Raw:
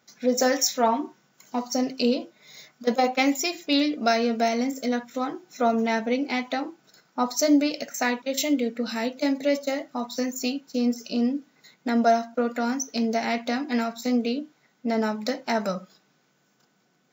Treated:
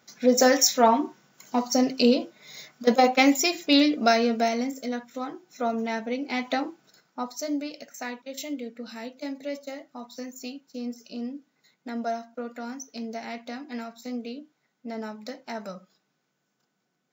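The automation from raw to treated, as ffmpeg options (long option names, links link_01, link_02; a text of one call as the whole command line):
ffmpeg -i in.wav -af "volume=9.5dB,afade=type=out:start_time=3.85:duration=0.99:silence=0.398107,afade=type=in:start_time=6.25:duration=0.28:silence=0.473151,afade=type=out:start_time=6.53:duration=0.8:silence=0.266073" out.wav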